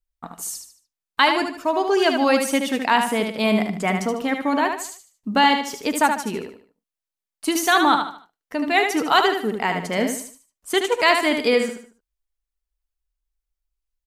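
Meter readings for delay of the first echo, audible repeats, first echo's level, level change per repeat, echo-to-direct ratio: 75 ms, 4, −6.0 dB, −9.0 dB, −5.5 dB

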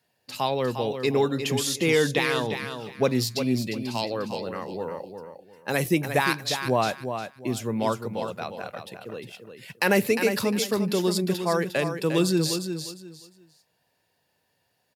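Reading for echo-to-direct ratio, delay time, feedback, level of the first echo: −7.5 dB, 354 ms, 24%, −8.0 dB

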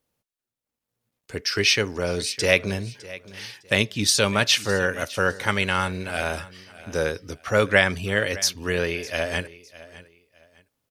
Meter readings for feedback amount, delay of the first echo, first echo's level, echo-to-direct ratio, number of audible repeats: 27%, 607 ms, −18.5 dB, −18.0 dB, 2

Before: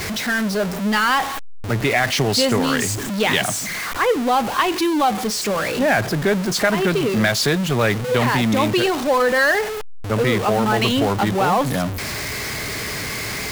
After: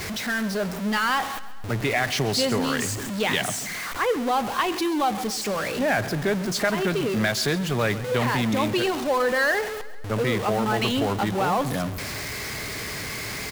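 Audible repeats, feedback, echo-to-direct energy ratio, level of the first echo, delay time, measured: 4, 55%, −15.5 dB, −17.0 dB, 134 ms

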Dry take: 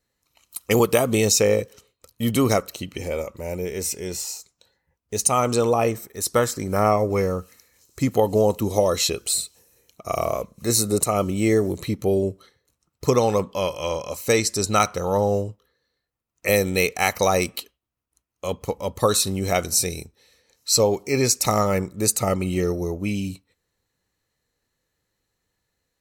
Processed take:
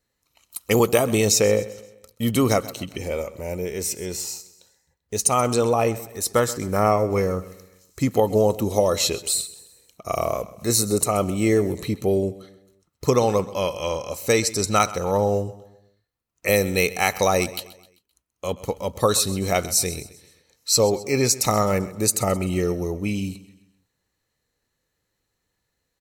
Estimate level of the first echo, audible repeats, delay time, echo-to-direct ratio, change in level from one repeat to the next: −17.5 dB, 3, 130 ms, −16.5 dB, −7.5 dB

